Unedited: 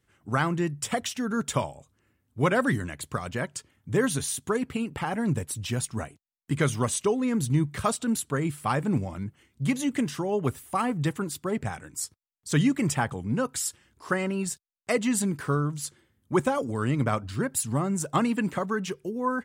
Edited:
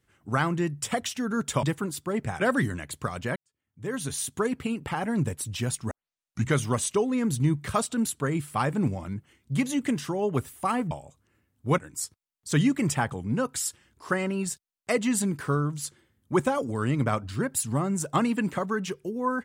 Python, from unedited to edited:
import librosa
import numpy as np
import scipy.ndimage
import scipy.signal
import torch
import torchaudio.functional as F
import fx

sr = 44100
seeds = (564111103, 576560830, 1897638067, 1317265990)

y = fx.edit(x, sr, fx.swap(start_s=1.63, length_s=0.87, other_s=11.01, other_length_s=0.77),
    fx.fade_in_span(start_s=3.46, length_s=0.87, curve='qua'),
    fx.tape_start(start_s=6.01, length_s=0.63), tone=tone)